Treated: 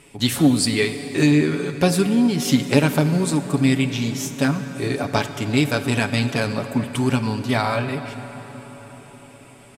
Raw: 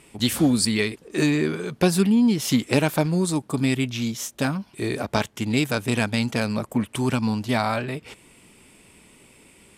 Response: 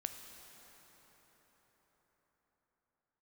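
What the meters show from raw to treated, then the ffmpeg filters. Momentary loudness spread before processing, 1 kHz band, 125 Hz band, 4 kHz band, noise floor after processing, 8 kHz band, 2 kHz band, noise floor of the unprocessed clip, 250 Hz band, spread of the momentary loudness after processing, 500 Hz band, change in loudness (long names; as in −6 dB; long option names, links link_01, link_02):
8 LU, +2.5 dB, +4.0 dB, +2.5 dB, −46 dBFS, +1.5 dB, +3.0 dB, −55 dBFS, +2.5 dB, 9 LU, +3.0 dB, +2.5 dB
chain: -filter_complex "[0:a]asplit=2[link_01][link_02];[link_02]aecho=1:1:7.1:0.79[link_03];[1:a]atrim=start_sample=2205,highshelf=frequency=11000:gain=-6[link_04];[link_03][link_04]afir=irnorm=-1:irlink=0,volume=4.5dB[link_05];[link_01][link_05]amix=inputs=2:normalize=0,volume=-5.5dB"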